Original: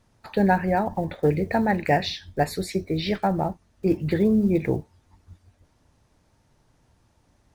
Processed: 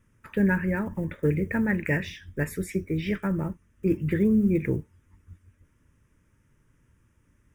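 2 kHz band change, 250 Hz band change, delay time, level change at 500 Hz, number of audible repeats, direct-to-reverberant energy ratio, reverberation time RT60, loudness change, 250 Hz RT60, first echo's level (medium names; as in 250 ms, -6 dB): -0.5 dB, -1.0 dB, no echo, -5.5 dB, no echo, no reverb, no reverb, -2.5 dB, no reverb, no echo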